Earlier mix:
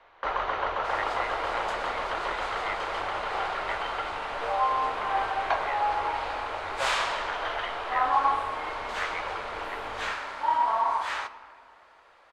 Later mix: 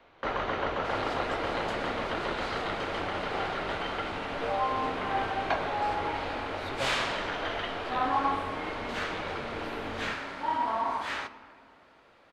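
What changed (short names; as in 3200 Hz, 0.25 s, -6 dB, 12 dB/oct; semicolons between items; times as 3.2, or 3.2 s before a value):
speech: remove synth low-pass 2000 Hz, resonance Q 7.4; first sound: remove air absorption 54 m; master: add graphic EQ 125/250/1000/8000 Hz +10/+11/-6/-4 dB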